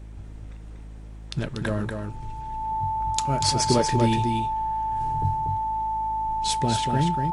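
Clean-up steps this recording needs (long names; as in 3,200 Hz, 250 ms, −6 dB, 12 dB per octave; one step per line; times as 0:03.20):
hum removal 53.1 Hz, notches 6
notch filter 880 Hz, Q 30
echo removal 239 ms −5 dB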